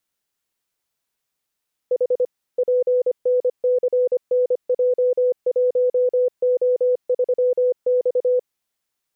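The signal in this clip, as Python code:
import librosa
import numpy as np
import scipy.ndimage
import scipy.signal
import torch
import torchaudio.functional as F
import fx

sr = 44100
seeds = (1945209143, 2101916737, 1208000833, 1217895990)

y = fx.morse(sr, text='H PNCNJ1O3X', wpm=25, hz=499.0, level_db=-14.5)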